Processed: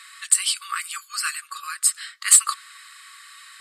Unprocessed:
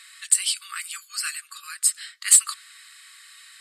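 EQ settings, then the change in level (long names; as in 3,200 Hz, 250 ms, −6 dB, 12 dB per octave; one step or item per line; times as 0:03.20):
high-pass with resonance 1,000 Hz, resonance Q 4.9
+1.0 dB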